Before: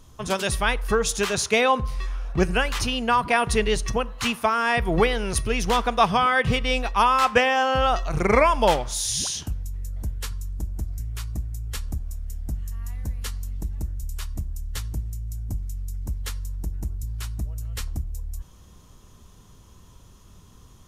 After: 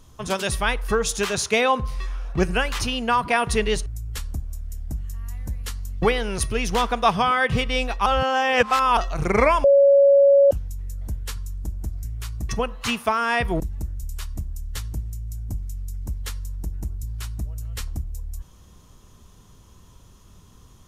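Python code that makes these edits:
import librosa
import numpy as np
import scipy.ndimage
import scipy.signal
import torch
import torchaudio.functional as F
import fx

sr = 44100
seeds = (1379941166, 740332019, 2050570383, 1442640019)

y = fx.edit(x, sr, fx.swap(start_s=3.86, length_s=1.11, other_s=11.44, other_length_s=2.16),
    fx.reverse_span(start_s=7.01, length_s=0.91),
    fx.bleep(start_s=8.59, length_s=0.87, hz=559.0, db=-10.5), tone=tone)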